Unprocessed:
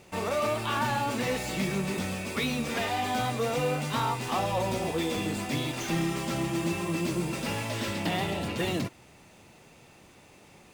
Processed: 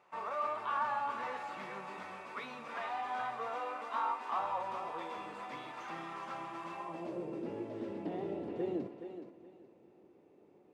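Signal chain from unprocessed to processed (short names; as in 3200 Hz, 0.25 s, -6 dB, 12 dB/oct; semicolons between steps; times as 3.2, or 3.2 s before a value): 3.55–4.29 brick-wall FIR high-pass 190 Hz; thinning echo 0.422 s, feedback 26%, high-pass 310 Hz, level -8 dB; on a send at -16 dB: reverb RT60 2.8 s, pre-delay 7 ms; on the sum: band-pass sweep 1100 Hz -> 380 Hz, 6.72–7.42; gain -2 dB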